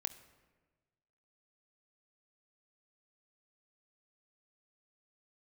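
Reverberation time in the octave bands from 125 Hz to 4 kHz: 1.7 s, 1.5 s, 1.5 s, 1.2 s, 1.2 s, 0.85 s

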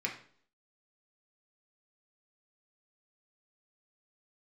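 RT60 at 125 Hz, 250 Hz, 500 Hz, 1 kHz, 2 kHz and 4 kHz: 0.55 s, 0.60 s, 0.55 s, 0.50 s, 0.45 s, 0.50 s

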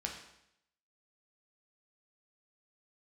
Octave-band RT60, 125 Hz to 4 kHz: 0.80 s, 0.80 s, 0.80 s, 0.75 s, 0.75 s, 0.75 s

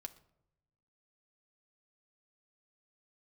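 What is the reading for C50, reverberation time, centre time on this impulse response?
16.5 dB, 0.80 s, 4 ms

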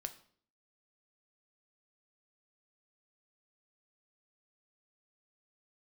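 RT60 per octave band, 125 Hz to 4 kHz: 0.65 s, 0.65 s, 0.60 s, 0.50 s, 0.45 s, 0.45 s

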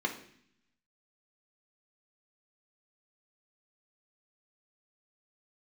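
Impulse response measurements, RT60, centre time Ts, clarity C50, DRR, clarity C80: 0.60 s, 15 ms, 10.0 dB, 0.5 dB, 13.5 dB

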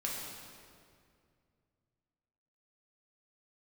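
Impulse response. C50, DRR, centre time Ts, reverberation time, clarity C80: 0.0 dB, -4.0 dB, 105 ms, 2.3 s, 1.5 dB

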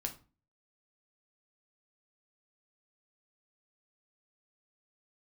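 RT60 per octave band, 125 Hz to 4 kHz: 0.50 s, 0.50 s, 0.35 s, 0.35 s, 0.30 s, 0.25 s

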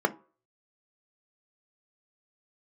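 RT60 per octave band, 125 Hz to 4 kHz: 0.35 s, 0.30 s, 0.40 s, 0.40 s, 0.30 s, 0.20 s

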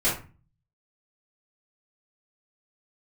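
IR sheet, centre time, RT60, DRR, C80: 33 ms, 0.35 s, -12.5 dB, 12.5 dB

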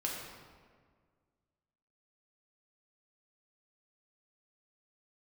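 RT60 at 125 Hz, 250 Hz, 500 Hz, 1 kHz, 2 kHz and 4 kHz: 2.1 s, 2.0 s, 1.8 s, 1.6 s, 1.4 s, 1.1 s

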